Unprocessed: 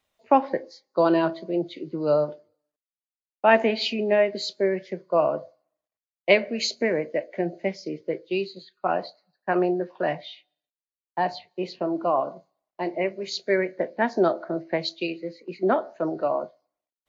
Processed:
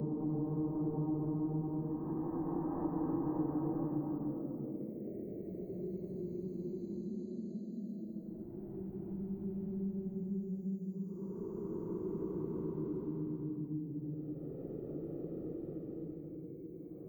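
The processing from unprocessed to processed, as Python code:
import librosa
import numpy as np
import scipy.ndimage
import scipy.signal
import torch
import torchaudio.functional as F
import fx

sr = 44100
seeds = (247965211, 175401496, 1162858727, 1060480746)

p1 = scipy.signal.sosfilt(scipy.signal.cheby2(4, 70, [870.0, 5500.0], 'bandstop', fs=sr, output='sos'), x)
p2 = fx.low_shelf(p1, sr, hz=390.0, db=-9.0)
p3 = p2 + 0.44 * np.pad(p2, (int(2.7 * sr / 1000.0), 0))[:len(p2)]
p4 = fx.auto_swell(p3, sr, attack_ms=639.0)
p5 = fx.step_gate(p4, sr, bpm=192, pattern='xxxx.x.xxxx..x', floor_db=-60.0, edge_ms=4.5)
p6 = p5 + fx.echo_stepped(p5, sr, ms=780, hz=3400.0, octaves=-1.4, feedback_pct=70, wet_db=-12, dry=0)
p7 = fx.fold_sine(p6, sr, drive_db=12, ceiling_db=-39.5)
p8 = fx.paulstretch(p7, sr, seeds[0], factor=13.0, window_s=0.25, from_s=6.92)
p9 = fx.band_squash(p8, sr, depth_pct=70)
y = F.gain(torch.from_numpy(p9), 13.0).numpy()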